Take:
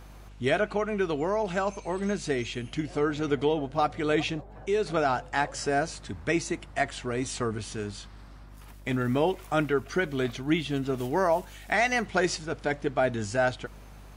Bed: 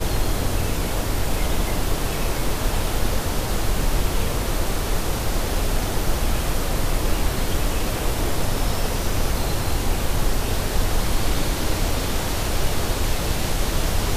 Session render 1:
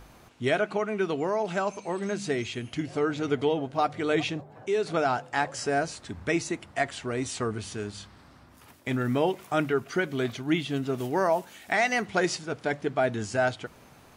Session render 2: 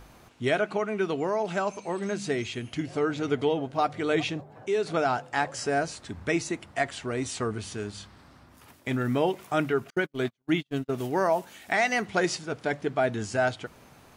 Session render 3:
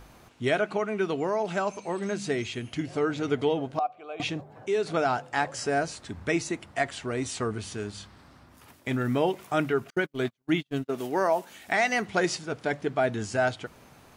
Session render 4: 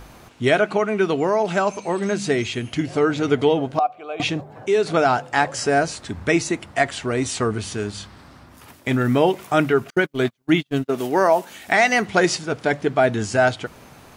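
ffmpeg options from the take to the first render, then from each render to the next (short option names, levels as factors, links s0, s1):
-af "bandreject=f=50:t=h:w=4,bandreject=f=100:t=h:w=4,bandreject=f=150:t=h:w=4,bandreject=f=200:t=h:w=4"
-filter_complex "[0:a]asettb=1/sr,asplit=3[s0][s1][s2];[s0]atrim=end=9.904[s3];[s1]atrim=start=9.9:end=10.95,asetpts=PTS-STARTPTS,afade=t=in:d=0.004:c=qsin,afade=t=out:st=1.046:d=0.004:c=qsin,agate=range=0.00562:threshold=0.0316:ratio=16:release=100:detection=peak[s4];[s2]atrim=start=10.946[s5];[s3][s4]acrossfade=d=0.004:c1=hsin:c2=qsin[s6];[s6][s5]acrossfade=d=0.004:c1=qsin:c2=hsin"
-filter_complex "[0:a]asettb=1/sr,asplit=3[s0][s1][s2];[s0]atrim=end=3.794[s3];[s1]atrim=start=3.79:end=4.2,asetpts=PTS-STARTPTS,afade=t=in:d=0.004:c=qsin,afade=t=out:st=0.406:d=0.004:c=qsin,asplit=3[s4][s5][s6];[s4]bandpass=f=730:t=q:w=8,volume=1[s7];[s5]bandpass=f=1090:t=q:w=8,volume=0.501[s8];[s6]bandpass=f=2440:t=q:w=8,volume=0.355[s9];[s7][s8][s9]amix=inputs=3:normalize=0[s10];[s2]atrim=start=4.196[s11];[s3][s10]acrossfade=d=0.004:c1=hsin:c2=qsin[s12];[s12][s11]acrossfade=d=0.004:c1=qsin:c2=hsin,asettb=1/sr,asplit=3[s13][s14][s15];[s13]atrim=end=10.874[s16];[s14]atrim=start=10.87:end=11.5,asetpts=PTS-STARTPTS,afade=t=in:d=0.004:c=qsin,afade=t=out:st=0.626:d=0.004:c=qsin,highpass=210[s17];[s15]atrim=start=11.496[s18];[s16][s17]acrossfade=d=0.004:c1=hsin:c2=qsin[s19];[s19][s18]acrossfade=d=0.004:c1=qsin:c2=hsin"
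-af "volume=2.51"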